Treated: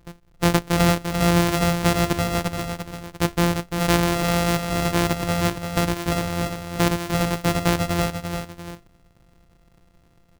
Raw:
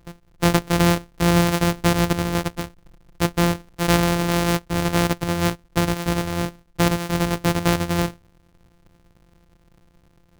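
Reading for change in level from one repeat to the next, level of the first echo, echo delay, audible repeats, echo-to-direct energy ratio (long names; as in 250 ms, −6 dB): −7.0 dB, −6.5 dB, 344 ms, 2, −5.5 dB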